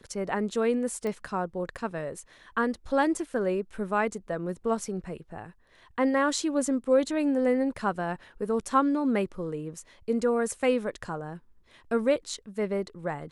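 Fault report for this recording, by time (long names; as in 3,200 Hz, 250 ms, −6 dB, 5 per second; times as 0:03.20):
0:01.07: click −22 dBFS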